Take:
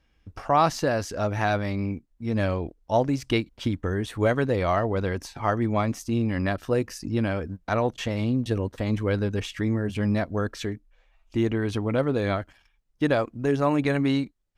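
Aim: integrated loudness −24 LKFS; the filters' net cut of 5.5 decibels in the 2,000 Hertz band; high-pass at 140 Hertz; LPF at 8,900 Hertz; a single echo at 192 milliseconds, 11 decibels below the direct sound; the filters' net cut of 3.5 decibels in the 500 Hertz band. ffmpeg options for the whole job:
ffmpeg -i in.wav -af "highpass=140,lowpass=8900,equalizer=frequency=500:width_type=o:gain=-4,equalizer=frequency=2000:width_type=o:gain=-7,aecho=1:1:192:0.282,volume=5dB" out.wav

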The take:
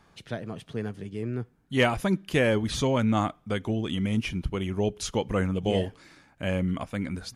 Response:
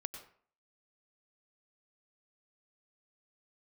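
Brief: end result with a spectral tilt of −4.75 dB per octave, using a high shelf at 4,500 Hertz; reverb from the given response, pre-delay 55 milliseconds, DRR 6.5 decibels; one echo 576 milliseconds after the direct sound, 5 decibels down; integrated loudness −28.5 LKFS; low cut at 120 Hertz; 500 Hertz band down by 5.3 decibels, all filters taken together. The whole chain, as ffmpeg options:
-filter_complex "[0:a]highpass=120,equalizer=frequency=500:width_type=o:gain=-6.5,highshelf=frequency=4500:gain=5,aecho=1:1:576:0.562,asplit=2[link_01][link_02];[1:a]atrim=start_sample=2205,adelay=55[link_03];[link_02][link_03]afir=irnorm=-1:irlink=0,volume=-5dB[link_04];[link_01][link_04]amix=inputs=2:normalize=0,volume=-0.5dB"

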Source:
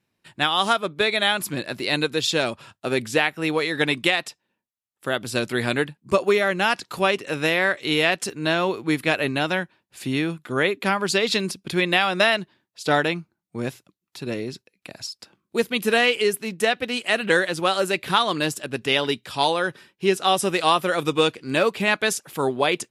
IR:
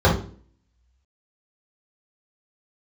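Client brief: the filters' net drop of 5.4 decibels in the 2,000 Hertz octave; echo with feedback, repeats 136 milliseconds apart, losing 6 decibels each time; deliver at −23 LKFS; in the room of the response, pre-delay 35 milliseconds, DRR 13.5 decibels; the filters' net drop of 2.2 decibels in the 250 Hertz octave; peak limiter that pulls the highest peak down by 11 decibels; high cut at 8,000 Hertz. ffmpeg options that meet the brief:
-filter_complex "[0:a]lowpass=8000,equalizer=frequency=250:width_type=o:gain=-3,equalizer=frequency=2000:width_type=o:gain=-7,alimiter=limit=-16.5dB:level=0:latency=1,aecho=1:1:136|272|408|544|680|816:0.501|0.251|0.125|0.0626|0.0313|0.0157,asplit=2[link_01][link_02];[1:a]atrim=start_sample=2205,adelay=35[link_03];[link_02][link_03]afir=irnorm=-1:irlink=0,volume=-35.5dB[link_04];[link_01][link_04]amix=inputs=2:normalize=0,volume=3.5dB"

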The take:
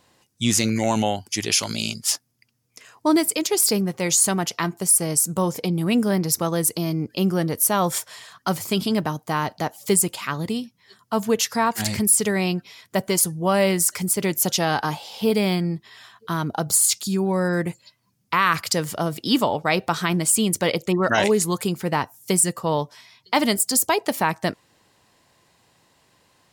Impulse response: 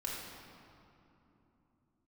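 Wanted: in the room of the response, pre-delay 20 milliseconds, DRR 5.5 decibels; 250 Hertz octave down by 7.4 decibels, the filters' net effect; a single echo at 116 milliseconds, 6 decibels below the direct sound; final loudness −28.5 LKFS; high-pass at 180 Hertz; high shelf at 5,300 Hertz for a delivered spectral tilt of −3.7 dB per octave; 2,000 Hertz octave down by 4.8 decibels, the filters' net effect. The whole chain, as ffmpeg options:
-filter_complex "[0:a]highpass=180,equalizer=frequency=250:width_type=o:gain=-8.5,equalizer=frequency=2000:width_type=o:gain=-5,highshelf=frequency=5300:gain=-7,aecho=1:1:116:0.501,asplit=2[link_01][link_02];[1:a]atrim=start_sample=2205,adelay=20[link_03];[link_02][link_03]afir=irnorm=-1:irlink=0,volume=-7.5dB[link_04];[link_01][link_04]amix=inputs=2:normalize=0,volume=-4dB"

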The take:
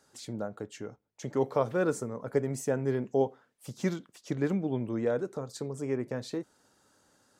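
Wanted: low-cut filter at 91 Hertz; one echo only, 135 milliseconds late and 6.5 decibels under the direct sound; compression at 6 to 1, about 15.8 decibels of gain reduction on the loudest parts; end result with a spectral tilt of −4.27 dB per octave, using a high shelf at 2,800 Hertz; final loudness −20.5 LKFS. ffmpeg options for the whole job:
ffmpeg -i in.wav -af "highpass=91,highshelf=frequency=2800:gain=8,acompressor=threshold=-39dB:ratio=6,aecho=1:1:135:0.473,volume=22dB" out.wav

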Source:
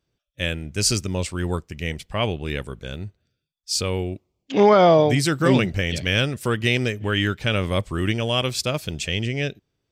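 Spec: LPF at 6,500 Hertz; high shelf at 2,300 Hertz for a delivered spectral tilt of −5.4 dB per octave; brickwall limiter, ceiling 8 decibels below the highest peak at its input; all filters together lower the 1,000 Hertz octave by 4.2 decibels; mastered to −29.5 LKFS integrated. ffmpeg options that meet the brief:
ffmpeg -i in.wav -af "lowpass=6500,equalizer=frequency=1000:width_type=o:gain=-5.5,highshelf=frequency=2300:gain=-3.5,volume=-2.5dB,alimiter=limit=-16.5dB:level=0:latency=1" out.wav

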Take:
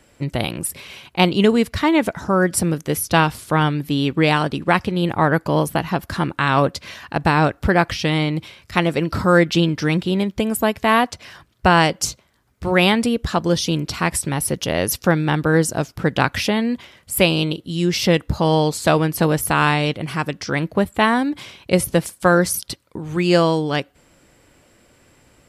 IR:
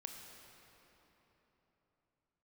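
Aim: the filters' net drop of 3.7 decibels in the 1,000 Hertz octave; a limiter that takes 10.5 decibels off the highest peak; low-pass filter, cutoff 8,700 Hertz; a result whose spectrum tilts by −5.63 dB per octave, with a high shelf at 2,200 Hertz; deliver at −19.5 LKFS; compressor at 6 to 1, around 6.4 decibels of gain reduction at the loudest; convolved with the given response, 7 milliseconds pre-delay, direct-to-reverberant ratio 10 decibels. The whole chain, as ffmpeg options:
-filter_complex "[0:a]lowpass=8700,equalizer=frequency=1000:width_type=o:gain=-3.5,highshelf=frequency=2200:gain=-6.5,acompressor=threshold=-17dB:ratio=6,alimiter=limit=-16.5dB:level=0:latency=1,asplit=2[link_01][link_02];[1:a]atrim=start_sample=2205,adelay=7[link_03];[link_02][link_03]afir=irnorm=-1:irlink=0,volume=-6.5dB[link_04];[link_01][link_04]amix=inputs=2:normalize=0,volume=8dB"

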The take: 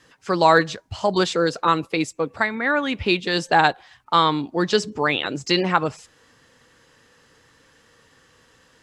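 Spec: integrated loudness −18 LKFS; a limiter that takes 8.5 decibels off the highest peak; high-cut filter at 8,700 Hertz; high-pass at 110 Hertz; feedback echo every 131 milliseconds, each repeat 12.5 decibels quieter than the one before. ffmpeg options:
ffmpeg -i in.wav -af "highpass=110,lowpass=8700,alimiter=limit=-9.5dB:level=0:latency=1,aecho=1:1:131|262|393:0.237|0.0569|0.0137,volume=5dB" out.wav

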